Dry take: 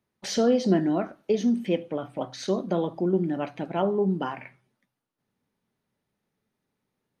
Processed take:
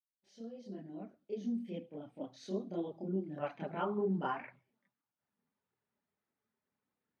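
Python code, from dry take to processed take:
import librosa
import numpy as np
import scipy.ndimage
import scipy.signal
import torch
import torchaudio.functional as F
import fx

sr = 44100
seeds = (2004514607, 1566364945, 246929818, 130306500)

y = fx.fade_in_head(x, sr, length_s=2.34)
y = scipy.signal.sosfilt(scipy.signal.butter(2, 82.0, 'highpass', fs=sr, output='sos'), y)
y = fx.high_shelf(y, sr, hz=5500.0, db=-9.5)
y = fx.chorus_voices(y, sr, voices=4, hz=0.85, base_ms=28, depth_ms=2.6, mix_pct=65)
y = fx.peak_eq(y, sr, hz=1300.0, db=fx.steps((0.0, -10.5), (3.38, 5.5)), octaves=1.8)
y = y * librosa.db_to_amplitude(-8.0)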